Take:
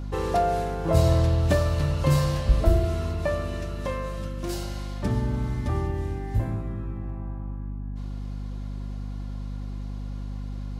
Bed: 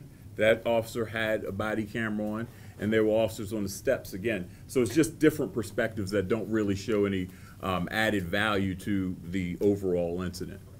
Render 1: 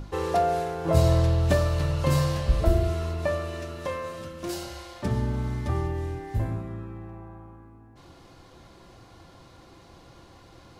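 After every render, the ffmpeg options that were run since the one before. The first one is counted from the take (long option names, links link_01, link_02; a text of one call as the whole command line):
ffmpeg -i in.wav -af "bandreject=frequency=50:width_type=h:width=6,bandreject=frequency=100:width_type=h:width=6,bandreject=frequency=150:width_type=h:width=6,bandreject=frequency=200:width_type=h:width=6,bandreject=frequency=250:width_type=h:width=6,bandreject=frequency=300:width_type=h:width=6" out.wav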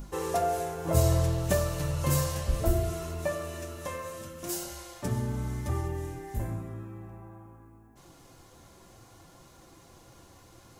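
ffmpeg -i in.wav -af "flanger=delay=4.7:depth=6.3:regen=-51:speed=0.63:shape=triangular,aexciter=amount=4.7:drive=2.1:freq=6000" out.wav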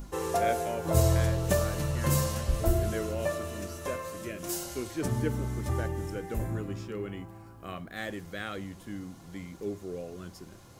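ffmpeg -i in.wav -i bed.wav -filter_complex "[1:a]volume=-10.5dB[link_01];[0:a][link_01]amix=inputs=2:normalize=0" out.wav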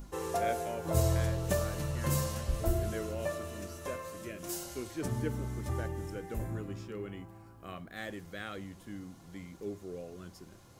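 ffmpeg -i in.wav -af "volume=-4.5dB" out.wav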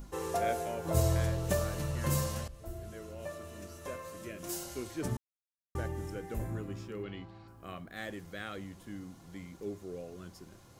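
ffmpeg -i in.wav -filter_complex "[0:a]asettb=1/sr,asplit=3[link_01][link_02][link_03];[link_01]atrim=end=7.034[link_04];[link_02]atrim=start=7.03:end=7.48,asetpts=PTS-STARTPTS,afade=type=in:duration=0.004:curve=qsin,afade=type=out:start_time=0.446:duration=0.004:curve=qsin,lowpass=frequency=4100:width_type=q:width=4.3[link_05];[link_03]atrim=start=7.476[link_06];[link_04][link_05]acrossfade=duration=0.004:curve1=hsin:curve2=qsin[link_07];[link_07][link_06]acrossfade=duration=0.004:curve1=qsin:curve2=hsin,asplit=4[link_08][link_09][link_10][link_11];[link_08]atrim=end=2.48,asetpts=PTS-STARTPTS,afade=type=out:start_time=2.476:duration=0.004:curve=hsin:silence=0.125893[link_12];[link_09]atrim=start=2.48:end=5.17,asetpts=PTS-STARTPTS,afade=type=in:duration=2.07:silence=0.125893,afade=type=out:start_time=2.686:duration=0.004:curve=hsin[link_13];[link_10]atrim=start=5.17:end=5.75,asetpts=PTS-STARTPTS,volume=0[link_14];[link_11]atrim=start=5.75,asetpts=PTS-STARTPTS,afade=type=in:duration=0.004:curve=hsin[link_15];[link_12][link_13][link_14][link_15]concat=n=4:v=0:a=1" out.wav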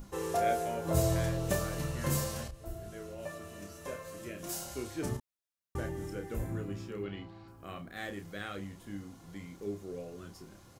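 ffmpeg -i in.wav -filter_complex "[0:a]asplit=2[link_01][link_02];[link_02]adelay=30,volume=-6.5dB[link_03];[link_01][link_03]amix=inputs=2:normalize=0" out.wav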